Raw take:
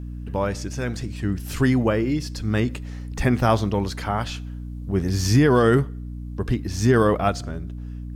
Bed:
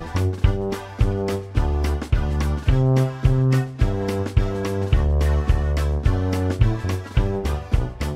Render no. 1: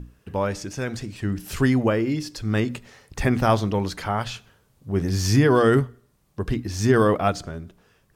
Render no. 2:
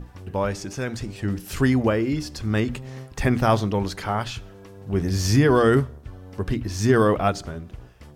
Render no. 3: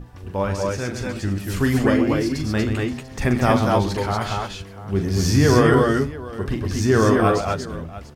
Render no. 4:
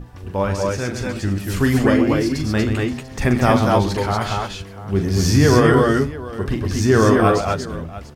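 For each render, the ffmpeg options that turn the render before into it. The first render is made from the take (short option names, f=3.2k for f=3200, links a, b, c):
-af "bandreject=f=60:t=h:w=6,bandreject=f=120:t=h:w=6,bandreject=f=180:t=h:w=6,bandreject=f=240:t=h:w=6,bandreject=f=300:t=h:w=6"
-filter_complex "[1:a]volume=-20dB[a];[0:a][a]amix=inputs=2:normalize=0"
-af "aecho=1:1:41|131|234|246|692:0.398|0.355|0.668|0.531|0.15"
-af "volume=2.5dB,alimiter=limit=-3dB:level=0:latency=1"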